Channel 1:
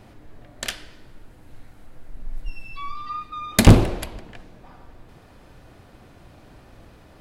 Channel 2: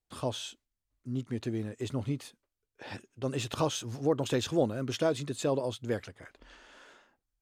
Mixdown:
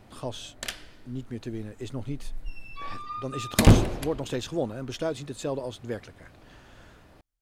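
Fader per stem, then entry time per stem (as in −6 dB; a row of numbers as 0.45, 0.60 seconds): −5.0, −1.5 decibels; 0.00, 0.00 seconds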